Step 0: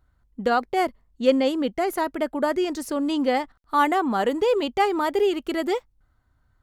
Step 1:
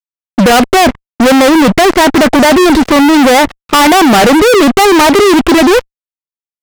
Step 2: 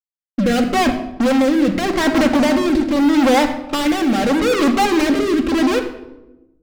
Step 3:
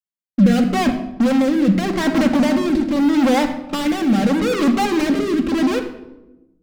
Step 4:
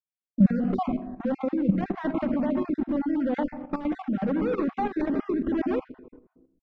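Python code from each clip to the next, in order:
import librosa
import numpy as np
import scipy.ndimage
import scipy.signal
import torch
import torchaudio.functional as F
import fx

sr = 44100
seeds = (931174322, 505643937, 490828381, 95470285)

y1 = scipy.signal.sosfilt(scipy.signal.butter(4, 3000.0, 'lowpass', fs=sr, output='sos'), x)
y1 = fx.fuzz(y1, sr, gain_db=45.0, gate_db=-50.0)
y1 = y1 * 10.0 ** (8.5 / 20.0)
y2 = fx.peak_eq(y1, sr, hz=12000.0, db=-4.5, octaves=1.0)
y2 = fx.rotary(y2, sr, hz=0.8)
y2 = fx.room_shoebox(y2, sr, seeds[0], volume_m3=4000.0, walls='furnished', distance_m=2.2)
y2 = y2 * 10.0 ** (-10.0 / 20.0)
y3 = fx.peak_eq(y2, sr, hz=190.0, db=12.5, octaves=0.55)
y3 = y3 * 10.0 ** (-4.0 / 20.0)
y4 = fx.spec_dropout(y3, sr, seeds[1], share_pct=27)
y4 = scipy.signal.sosfilt(scipy.signal.butter(2, 1400.0, 'lowpass', fs=sr, output='sos'), y4)
y4 = fx.level_steps(y4, sr, step_db=11)
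y4 = y4 * 10.0 ** (-3.0 / 20.0)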